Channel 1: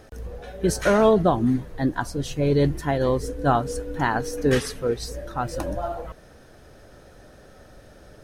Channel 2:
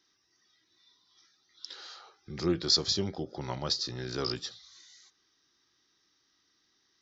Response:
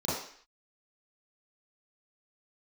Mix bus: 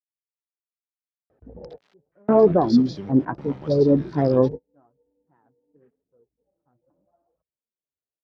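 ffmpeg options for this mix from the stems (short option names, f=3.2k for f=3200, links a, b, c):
-filter_complex "[0:a]afwtdn=0.0251,tiltshelf=f=1.2k:g=8.5,flanger=delay=1.5:depth=6.9:regen=36:speed=0.82:shape=triangular,adelay=1300,volume=0.5dB[a];[1:a]bass=f=250:g=10,treble=f=4k:g=10,aeval=exprs='val(0)*gte(abs(val(0)),0.02)':c=same,volume=-6.5dB,asplit=2[b][c];[c]apad=whole_len=420360[d];[a][d]sidechaingate=range=-41dB:threshold=-49dB:ratio=16:detection=peak[e];[e][b]amix=inputs=2:normalize=0,highpass=160,lowpass=2.2k"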